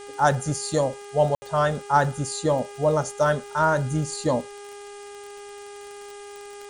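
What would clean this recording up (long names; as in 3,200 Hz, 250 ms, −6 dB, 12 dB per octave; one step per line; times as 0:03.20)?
click removal
hum removal 407 Hz, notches 8
ambience match 0:01.35–0:01.42
noise reduction from a noise print 28 dB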